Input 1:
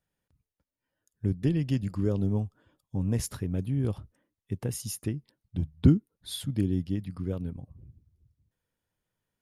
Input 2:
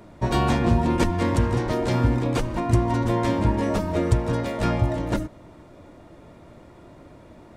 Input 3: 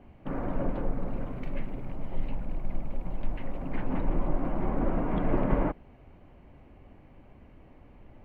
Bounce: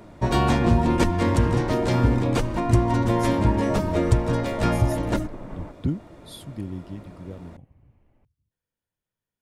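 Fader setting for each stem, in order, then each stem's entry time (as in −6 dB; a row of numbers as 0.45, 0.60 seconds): −6.0, +1.0, −12.0 decibels; 0.00, 0.00, 0.00 seconds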